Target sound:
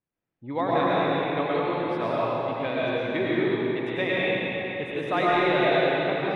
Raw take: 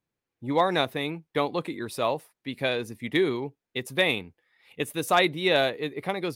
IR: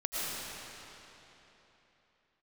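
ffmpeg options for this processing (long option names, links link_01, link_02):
-filter_complex "[0:a]lowpass=2600[link_01];[1:a]atrim=start_sample=2205[link_02];[link_01][link_02]afir=irnorm=-1:irlink=0,volume=-4dB"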